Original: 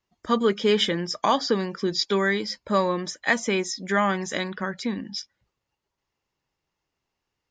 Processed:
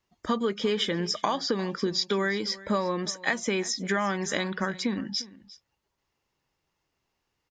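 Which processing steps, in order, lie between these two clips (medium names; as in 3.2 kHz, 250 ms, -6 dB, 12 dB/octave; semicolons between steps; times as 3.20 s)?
compression 6:1, threshold -26 dBFS, peak gain reduction 10.5 dB; delay 351 ms -19 dB; trim +2.5 dB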